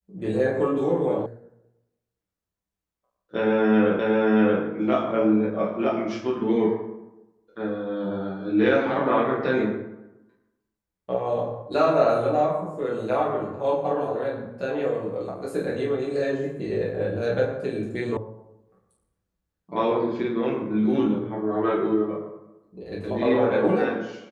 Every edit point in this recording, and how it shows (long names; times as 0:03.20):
0:01.26: cut off before it has died away
0:03.99: the same again, the last 0.63 s
0:18.17: cut off before it has died away